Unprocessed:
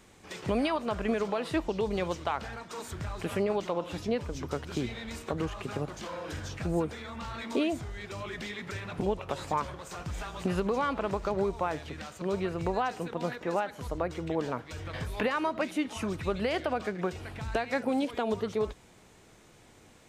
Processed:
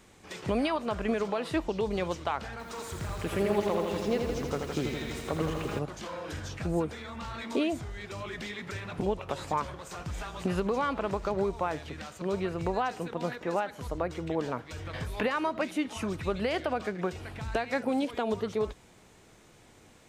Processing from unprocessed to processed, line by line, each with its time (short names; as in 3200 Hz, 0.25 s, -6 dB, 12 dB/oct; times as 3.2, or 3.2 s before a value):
2.51–5.79 lo-fi delay 82 ms, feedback 80%, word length 9-bit, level -5 dB